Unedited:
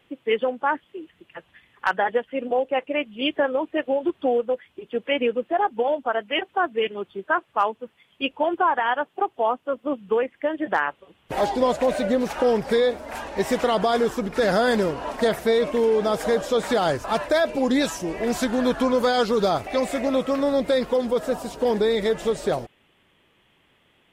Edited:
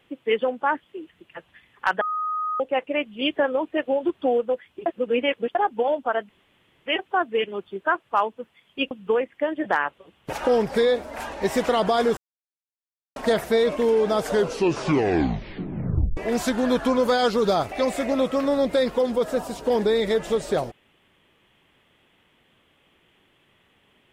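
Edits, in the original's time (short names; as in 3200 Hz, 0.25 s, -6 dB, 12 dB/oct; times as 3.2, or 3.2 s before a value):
2.01–2.6 bleep 1250 Hz -23.5 dBFS
4.86–5.55 reverse
6.29 insert room tone 0.57 s
8.34–9.93 cut
11.35–12.28 cut
14.12–15.11 mute
16.14 tape stop 1.98 s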